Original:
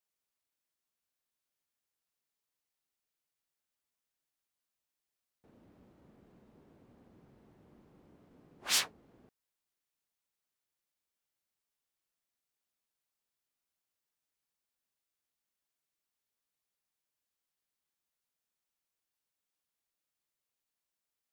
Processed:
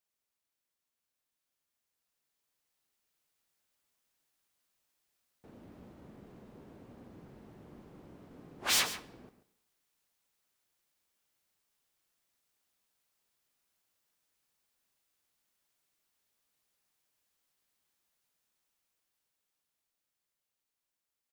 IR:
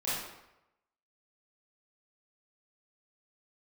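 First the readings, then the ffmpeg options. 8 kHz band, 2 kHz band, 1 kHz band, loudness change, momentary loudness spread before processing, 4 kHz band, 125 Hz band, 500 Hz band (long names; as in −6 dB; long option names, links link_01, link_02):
+1.5 dB, +4.0 dB, +5.5 dB, +1.5 dB, 14 LU, +1.5 dB, +8.5 dB, +7.0 dB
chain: -filter_complex "[0:a]dynaudnorm=framelen=160:gausssize=31:maxgain=8dB,asoftclip=type=hard:threshold=-25.5dB,aecho=1:1:137:0.211,asplit=2[link_01][link_02];[1:a]atrim=start_sample=2205[link_03];[link_02][link_03]afir=irnorm=-1:irlink=0,volume=-22.5dB[link_04];[link_01][link_04]amix=inputs=2:normalize=0"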